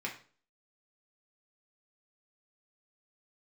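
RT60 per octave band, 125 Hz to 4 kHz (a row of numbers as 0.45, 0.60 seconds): 0.45, 0.45, 0.45, 0.40, 0.35, 0.35 seconds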